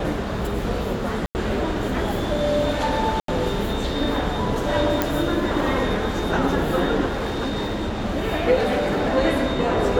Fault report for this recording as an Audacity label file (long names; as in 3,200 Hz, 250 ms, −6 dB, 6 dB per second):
1.260000	1.350000	drop-out 89 ms
3.200000	3.280000	drop-out 83 ms
5.020000	5.020000	click
7.060000	8.050000	clipping −21.5 dBFS
8.580000	9.170000	clipping −18 dBFS